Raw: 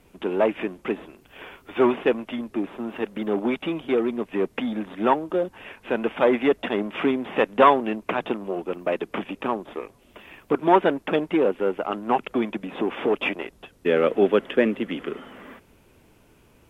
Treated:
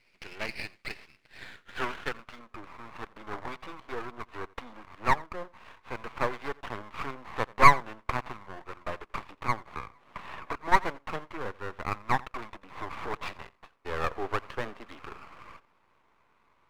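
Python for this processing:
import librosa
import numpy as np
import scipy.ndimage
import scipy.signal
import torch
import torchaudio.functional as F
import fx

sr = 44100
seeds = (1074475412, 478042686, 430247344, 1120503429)

p1 = fx.filter_sweep_bandpass(x, sr, from_hz=2200.0, to_hz=1100.0, start_s=1.05, end_s=2.73, q=4.2)
p2 = fx.rider(p1, sr, range_db=4, speed_s=2.0)
p3 = p1 + F.gain(torch.from_numpy(p2), -1.5).numpy()
p4 = np.maximum(p3, 0.0)
p5 = p4 + fx.echo_single(p4, sr, ms=86, db=-22.5, dry=0)
y = fx.band_squash(p5, sr, depth_pct=100, at=(9.73, 10.72))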